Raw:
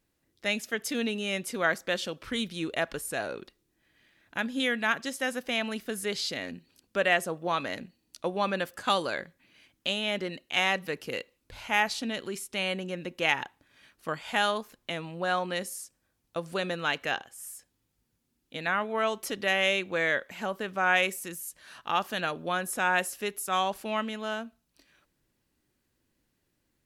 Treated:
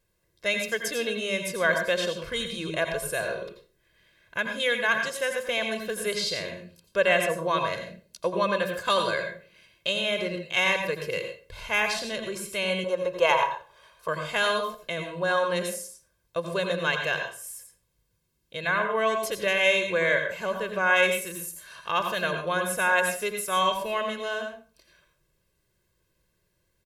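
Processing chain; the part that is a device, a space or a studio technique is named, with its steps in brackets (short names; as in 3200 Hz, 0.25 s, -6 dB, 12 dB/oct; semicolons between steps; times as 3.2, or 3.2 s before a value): microphone above a desk (comb 1.9 ms, depth 83%; reverb RT60 0.40 s, pre-delay 79 ms, DRR 5 dB); 12.84–14.08 graphic EQ 125/250/500/1000/2000 Hz -4/-11/+6/+11/-6 dB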